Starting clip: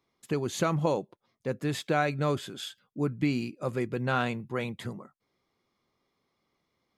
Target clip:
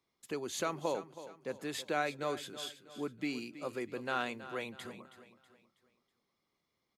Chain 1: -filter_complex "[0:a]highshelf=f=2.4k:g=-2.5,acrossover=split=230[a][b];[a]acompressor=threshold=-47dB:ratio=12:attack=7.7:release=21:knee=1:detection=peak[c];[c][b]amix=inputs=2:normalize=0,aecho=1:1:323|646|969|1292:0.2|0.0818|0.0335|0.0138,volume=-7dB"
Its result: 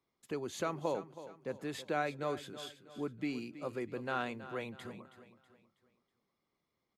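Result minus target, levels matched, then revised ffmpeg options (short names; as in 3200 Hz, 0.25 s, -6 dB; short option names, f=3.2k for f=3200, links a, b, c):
compressor: peak gain reduction -6 dB; 4000 Hz band -4.0 dB
-filter_complex "[0:a]highshelf=f=2.4k:g=4.5,acrossover=split=230[a][b];[a]acompressor=threshold=-53.5dB:ratio=12:attack=7.7:release=21:knee=1:detection=peak[c];[c][b]amix=inputs=2:normalize=0,aecho=1:1:323|646|969|1292:0.2|0.0818|0.0335|0.0138,volume=-7dB"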